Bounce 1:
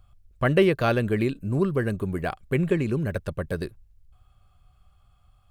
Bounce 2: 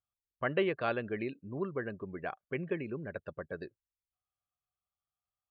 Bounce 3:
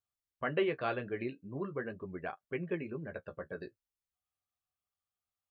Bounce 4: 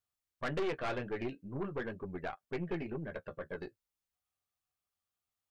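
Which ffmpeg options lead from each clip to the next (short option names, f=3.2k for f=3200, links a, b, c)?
-af "highpass=f=420:p=1,afftdn=nr=21:nf=-42,lowpass=3.7k,volume=-7.5dB"
-af "flanger=delay=9.6:depth=7:regen=-30:speed=0.41:shape=triangular,volume=2dB"
-af "aeval=exprs='(tanh(50.1*val(0)+0.5)-tanh(0.5))/50.1':c=same,volume=3.5dB"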